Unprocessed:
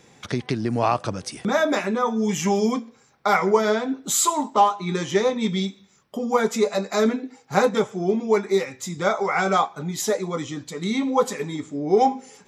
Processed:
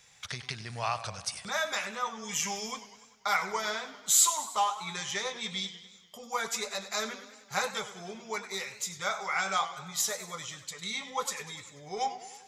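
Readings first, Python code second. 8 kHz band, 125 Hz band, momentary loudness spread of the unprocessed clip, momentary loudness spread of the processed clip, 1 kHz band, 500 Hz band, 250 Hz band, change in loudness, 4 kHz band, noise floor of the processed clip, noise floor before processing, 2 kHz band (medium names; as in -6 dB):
-0.5 dB, -16.0 dB, 10 LU, 10 LU, -10.0 dB, -18.0 dB, -22.5 dB, -9.0 dB, -1.5 dB, -57 dBFS, -56 dBFS, -5.0 dB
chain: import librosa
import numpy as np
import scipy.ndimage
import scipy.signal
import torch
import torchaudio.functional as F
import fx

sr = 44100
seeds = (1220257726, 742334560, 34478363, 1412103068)

y = fx.tone_stack(x, sr, knobs='10-0-10')
y = fx.echo_warbled(y, sr, ms=98, feedback_pct=61, rate_hz=2.8, cents=127, wet_db=-14.0)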